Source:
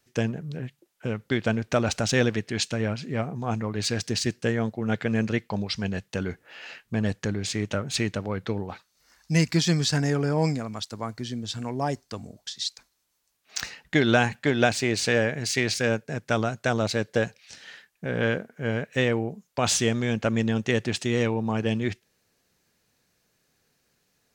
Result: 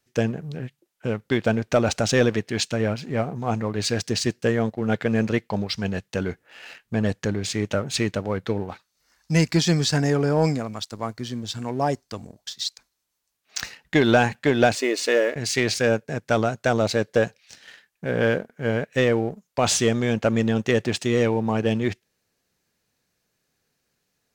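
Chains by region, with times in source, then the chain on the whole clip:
14.75–15.36 s: companding laws mixed up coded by A + brick-wall FIR high-pass 240 Hz + comb of notches 790 Hz
whole clip: dynamic bell 550 Hz, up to +4 dB, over -33 dBFS, Q 0.79; waveshaping leveller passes 1; trim -2 dB

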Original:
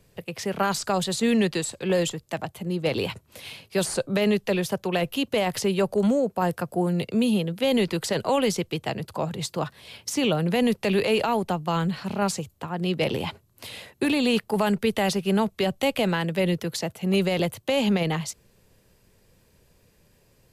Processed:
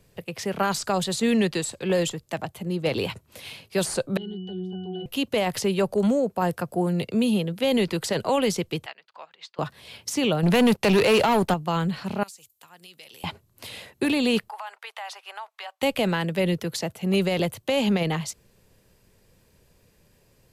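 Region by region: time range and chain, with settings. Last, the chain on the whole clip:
4.17–5.06 s: resonant high shelf 2.6 kHz +6.5 dB, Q 3 + pitch-class resonator F#, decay 0.57 s + level flattener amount 70%
8.86–9.59 s: high-pass 1.4 kHz + distance through air 220 m + upward expansion, over -51 dBFS
10.43–11.54 s: waveshaping leveller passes 2 + tape noise reduction on one side only encoder only
12.23–13.24 s: pre-emphasis filter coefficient 0.97 + compression 5:1, threshold -42 dBFS
14.49–15.82 s: steep high-pass 810 Hz + tilt EQ -4 dB/octave + compression 5:1, threshold -32 dBFS
whole clip: none

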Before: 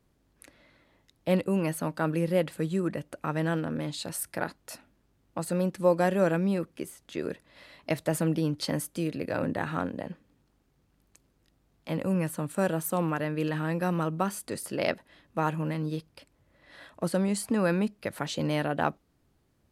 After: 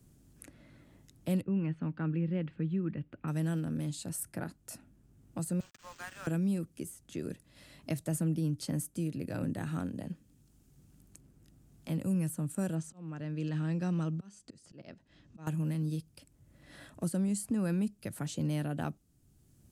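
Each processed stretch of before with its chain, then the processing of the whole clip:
1.42–3.28 s: low-pass 2.6 kHz 24 dB/octave + peaking EQ 640 Hz -7.5 dB 0.47 oct
5.60–6.27 s: send-on-delta sampling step -40.5 dBFS + high-pass 1.1 kHz 24 dB/octave + decimation joined by straight lines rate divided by 4×
12.75–15.47 s: low-pass 6.4 kHz 24 dB/octave + slow attack 663 ms
whole clip: graphic EQ 125/500/1000/2000/4000/8000 Hz +4/-8/-10/-8/-7/+5 dB; three bands compressed up and down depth 40%; trim -2.5 dB

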